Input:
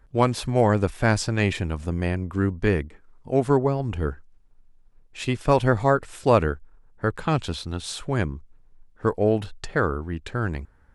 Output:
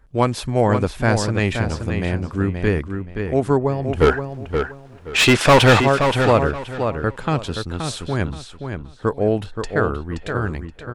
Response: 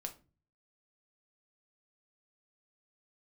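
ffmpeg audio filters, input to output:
-filter_complex "[0:a]asplit=3[link_01][link_02][link_03];[link_01]afade=type=out:start_time=4:duration=0.02[link_04];[link_02]asplit=2[link_05][link_06];[link_06]highpass=frequency=720:poles=1,volume=31dB,asoftclip=type=tanh:threshold=-5.5dB[link_07];[link_05][link_07]amix=inputs=2:normalize=0,lowpass=frequency=4000:poles=1,volume=-6dB,afade=type=in:start_time=4:duration=0.02,afade=type=out:start_time=5.79:duration=0.02[link_08];[link_03]afade=type=in:start_time=5.79:duration=0.02[link_09];[link_04][link_08][link_09]amix=inputs=3:normalize=0,asplit=2[link_10][link_11];[link_11]adelay=525,lowpass=frequency=4900:poles=1,volume=-6.5dB,asplit=2[link_12][link_13];[link_13]adelay=525,lowpass=frequency=4900:poles=1,volume=0.25,asplit=2[link_14][link_15];[link_15]adelay=525,lowpass=frequency=4900:poles=1,volume=0.25[link_16];[link_12][link_14][link_16]amix=inputs=3:normalize=0[link_17];[link_10][link_17]amix=inputs=2:normalize=0,volume=2dB"

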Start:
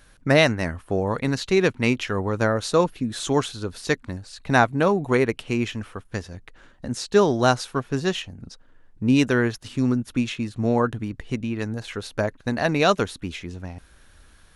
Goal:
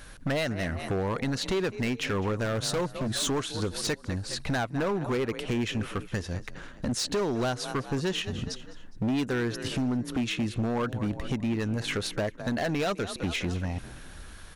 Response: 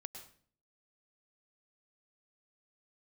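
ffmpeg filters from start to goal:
-filter_complex "[0:a]asplit=4[link_01][link_02][link_03][link_04];[link_02]adelay=206,afreqshift=36,volume=-20.5dB[link_05];[link_03]adelay=412,afreqshift=72,volume=-27.6dB[link_06];[link_04]adelay=618,afreqshift=108,volume=-34.8dB[link_07];[link_01][link_05][link_06][link_07]amix=inputs=4:normalize=0,acompressor=threshold=-31dB:ratio=4,asoftclip=type=hard:threshold=-31dB,asettb=1/sr,asplit=3[link_08][link_09][link_10];[link_08]atrim=end=2.444[link_11];[link_09]atrim=start=2.44:end=3.21,asetpts=PTS-STARTPTS,afade=type=in:duration=0.004:curve=qsin,afade=type=out:start_time=0.766:duration=0.004:curve=qsin,equalizer=frequency=130:width_type=o:width=0.22:gain=15[link_12];[link_10]atrim=start=3.206[link_13];[link_11][link_12]acrossfade=duration=0.004:curve1=hsin:curve2=qsin[link_14];[link_14][link_13]acrossfade=duration=0.004:curve1=qsin:curve2=hsin,aeval=exprs='0.0299*(abs(mod(val(0)/0.0299+3,4)-2)-1)':channel_layout=same,volume=7dB"

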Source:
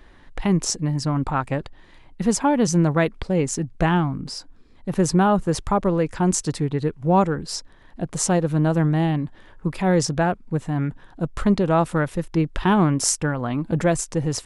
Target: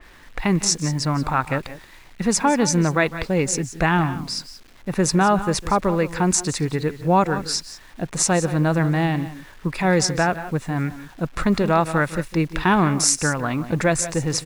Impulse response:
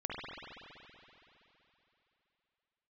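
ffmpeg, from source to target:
-filter_complex "[0:a]bandreject=frequency=3100:width=6.1,asplit=2[link_01][link_02];[link_02]aecho=0:1:153|178:0.112|0.178[link_03];[link_01][link_03]amix=inputs=2:normalize=0,acrusher=bits=8:mix=0:aa=0.000001,equalizer=frequency=2100:width=0.57:gain=7.5,asplit=2[link_04][link_05];[link_05]alimiter=limit=-9.5dB:level=0:latency=1:release=156,volume=-2.5dB[link_06];[link_04][link_06]amix=inputs=2:normalize=0,adynamicequalizer=threshold=0.0282:dfrequency=3100:dqfactor=0.7:tfrequency=3100:tqfactor=0.7:attack=5:release=100:ratio=0.375:range=2:mode=boostabove:tftype=highshelf,volume=-5.5dB"

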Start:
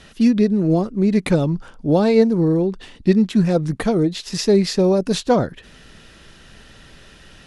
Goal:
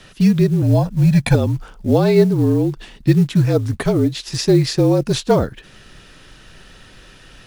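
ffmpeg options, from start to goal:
ffmpeg -i in.wav -filter_complex "[0:a]asettb=1/sr,asplit=3[link_01][link_02][link_03];[link_01]atrim=end=0.624[link_04];[link_02]atrim=start=0.62:end=1.35,asetpts=PTS-STARTPTS,afade=type=in:duration=0.004:curve=qsin,afade=type=out:start_time=0.726:duration=0.004:curve=qsin,aecho=1:1:1.2:0.95,atrim=end_sample=32193[link_05];[link_03]atrim=start=1.346[link_06];[link_04][link_05]acrossfade=duration=0.004:curve1=hsin:curve2=qsin[link_07];[link_07][link_06]acrossfade=duration=0.004:curve1=qsin:curve2=hsin,afreqshift=-44,acrusher=bits=8:mode=log:mix=0:aa=0.000001,volume=1.5dB" out.wav

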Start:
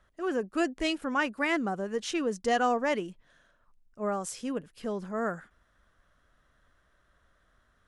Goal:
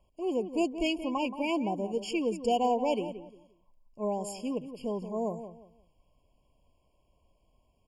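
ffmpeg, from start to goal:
ffmpeg -i in.wav -filter_complex "[0:a]asplit=2[link_01][link_02];[link_02]adelay=176,lowpass=frequency=1700:poles=1,volume=-10.5dB,asplit=2[link_03][link_04];[link_04]adelay=176,lowpass=frequency=1700:poles=1,volume=0.28,asplit=2[link_05][link_06];[link_06]adelay=176,lowpass=frequency=1700:poles=1,volume=0.28[link_07];[link_01][link_03][link_05][link_07]amix=inputs=4:normalize=0,asoftclip=type=hard:threshold=-17dB,afftfilt=real='re*eq(mod(floor(b*sr/1024/1100),2),0)':imag='im*eq(mod(floor(b*sr/1024/1100),2),0)':win_size=1024:overlap=0.75" out.wav

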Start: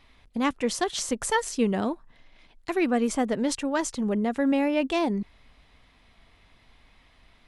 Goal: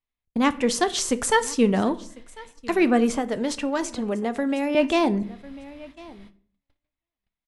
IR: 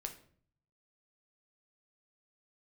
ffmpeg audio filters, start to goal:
-filter_complex "[0:a]aecho=1:1:1046|2092:0.0794|0.0119,agate=range=-39dB:threshold=-49dB:ratio=16:detection=peak,asettb=1/sr,asplit=3[link_01][link_02][link_03];[link_01]atrim=end=3.104[link_04];[link_02]atrim=start=3.1:end=4.75,asetpts=PTS-STARTPTS,afade=type=in:duration=0.004:curve=qsin,afade=type=out:start_time=1.646:duration=0.004:curve=qsin,acrossover=split=330|4600[link_05][link_06][link_07];[link_05]acompressor=threshold=-36dB:ratio=4[link_08];[link_06]acompressor=threshold=-29dB:ratio=4[link_09];[link_07]acompressor=threshold=-41dB:ratio=4[link_10];[link_08][link_09][link_10]amix=inputs=3:normalize=0[link_11];[link_03]atrim=start=4.746[link_12];[link_04][link_11]acrossfade=duration=0.004:curve1=hsin:curve2=qsin[link_13];[link_13][link_12]acrossfade=duration=0.004:curve1=qsin:curve2=hsin,asplit=2[link_14][link_15];[1:a]atrim=start_sample=2205,afade=type=out:start_time=0.41:duration=0.01,atrim=end_sample=18522[link_16];[link_15][link_16]afir=irnorm=-1:irlink=0,volume=0dB[link_17];[link_14][link_17]amix=inputs=2:normalize=0"

